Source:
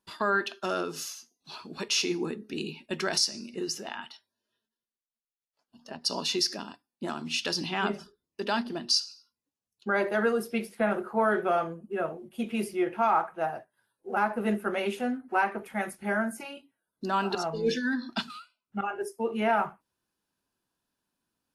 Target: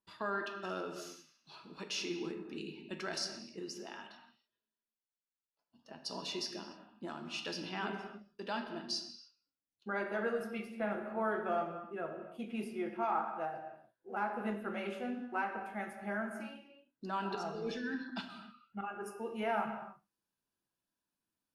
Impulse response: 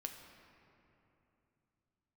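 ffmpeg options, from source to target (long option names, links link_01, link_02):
-filter_complex "[0:a]asetnsamples=nb_out_samples=441:pad=0,asendcmd='19.06 highshelf g 3',highshelf=frequency=6500:gain=-9.5[link_01];[1:a]atrim=start_sample=2205,afade=type=out:start_time=0.39:duration=0.01,atrim=end_sample=17640,asetrate=48510,aresample=44100[link_02];[link_01][link_02]afir=irnorm=-1:irlink=0,volume=-5dB"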